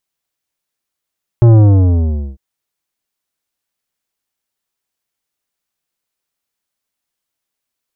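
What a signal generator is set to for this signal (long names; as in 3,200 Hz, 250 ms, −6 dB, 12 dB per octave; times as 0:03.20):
bass drop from 120 Hz, over 0.95 s, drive 12 dB, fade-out 0.84 s, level −4.5 dB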